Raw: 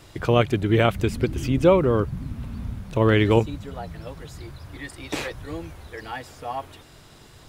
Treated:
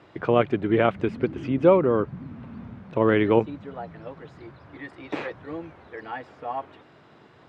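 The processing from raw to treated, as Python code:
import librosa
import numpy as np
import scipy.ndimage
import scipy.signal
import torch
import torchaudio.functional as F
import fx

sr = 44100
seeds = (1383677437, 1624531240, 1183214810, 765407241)

y = fx.bandpass_edges(x, sr, low_hz=180.0, high_hz=2000.0)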